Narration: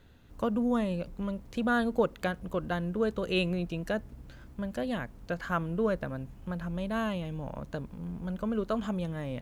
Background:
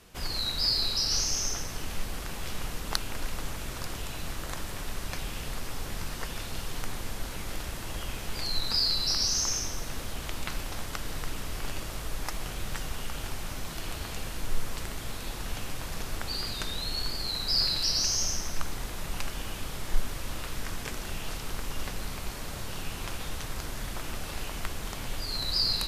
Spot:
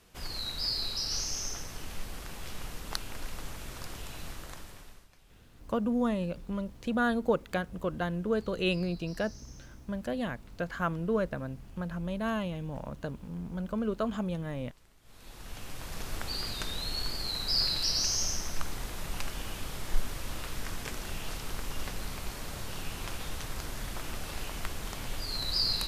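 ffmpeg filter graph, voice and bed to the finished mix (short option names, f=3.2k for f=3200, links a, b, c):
-filter_complex "[0:a]adelay=5300,volume=-0.5dB[a];[1:a]volume=19dB,afade=t=out:st=4.25:d=0.83:silence=0.0891251,afade=t=in:st=15.02:d=1.15:silence=0.0595662[b];[a][b]amix=inputs=2:normalize=0"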